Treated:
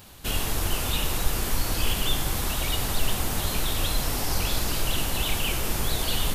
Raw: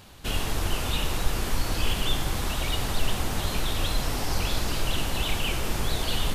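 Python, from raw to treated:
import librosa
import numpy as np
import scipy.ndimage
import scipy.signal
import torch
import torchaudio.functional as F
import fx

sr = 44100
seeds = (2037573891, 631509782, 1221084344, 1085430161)

y = fx.high_shelf(x, sr, hz=9500.0, db=12.0)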